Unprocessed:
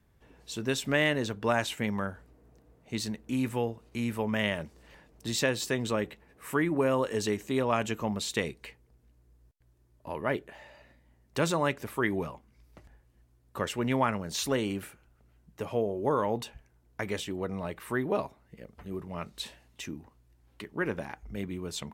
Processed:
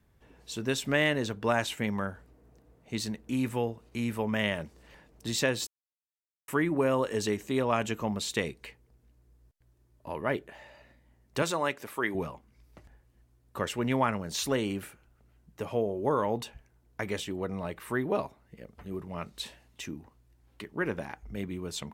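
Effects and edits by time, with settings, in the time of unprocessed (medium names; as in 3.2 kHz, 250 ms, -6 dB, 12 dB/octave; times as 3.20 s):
5.67–6.48 s: mute
11.42–12.15 s: high-pass 390 Hz 6 dB/octave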